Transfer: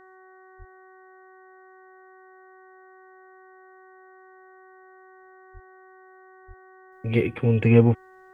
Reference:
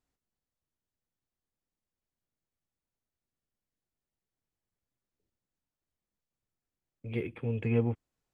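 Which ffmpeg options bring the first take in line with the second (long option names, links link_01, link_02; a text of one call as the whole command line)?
ffmpeg -i in.wav -filter_complex "[0:a]bandreject=frequency=375.2:width_type=h:width=4,bandreject=frequency=750.4:width_type=h:width=4,bandreject=frequency=1125.6:width_type=h:width=4,bandreject=frequency=1500.8:width_type=h:width=4,bandreject=frequency=1876:width_type=h:width=4,asplit=3[link_01][link_02][link_03];[link_01]afade=type=out:start_time=0.58:duration=0.02[link_04];[link_02]highpass=frequency=140:width=0.5412,highpass=frequency=140:width=1.3066,afade=type=in:start_time=0.58:duration=0.02,afade=type=out:start_time=0.7:duration=0.02[link_05];[link_03]afade=type=in:start_time=0.7:duration=0.02[link_06];[link_04][link_05][link_06]amix=inputs=3:normalize=0,asplit=3[link_07][link_08][link_09];[link_07]afade=type=out:start_time=5.53:duration=0.02[link_10];[link_08]highpass=frequency=140:width=0.5412,highpass=frequency=140:width=1.3066,afade=type=in:start_time=5.53:duration=0.02,afade=type=out:start_time=5.65:duration=0.02[link_11];[link_09]afade=type=in:start_time=5.65:duration=0.02[link_12];[link_10][link_11][link_12]amix=inputs=3:normalize=0,asplit=3[link_13][link_14][link_15];[link_13]afade=type=out:start_time=6.47:duration=0.02[link_16];[link_14]highpass=frequency=140:width=0.5412,highpass=frequency=140:width=1.3066,afade=type=in:start_time=6.47:duration=0.02,afade=type=out:start_time=6.59:duration=0.02[link_17];[link_15]afade=type=in:start_time=6.59:duration=0.02[link_18];[link_16][link_17][link_18]amix=inputs=3:normalize=0,asetnsamples=nb_out_samples=441:pad=0,asendcmd='6.92 volume volume -12dB',volume=0dB" out.wav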